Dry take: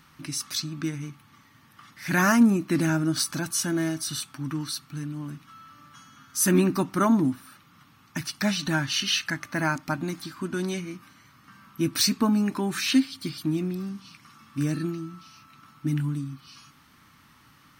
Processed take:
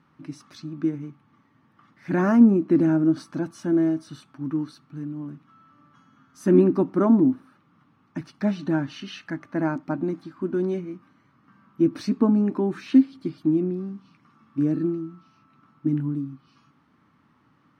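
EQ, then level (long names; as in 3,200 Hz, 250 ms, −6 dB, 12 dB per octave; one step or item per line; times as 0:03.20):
dynamic equaliser 360 Hz, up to +7 dB, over −37 dBFS, Q 0.72
resonant band-pass 350 Hz, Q 0.61
0.0 dB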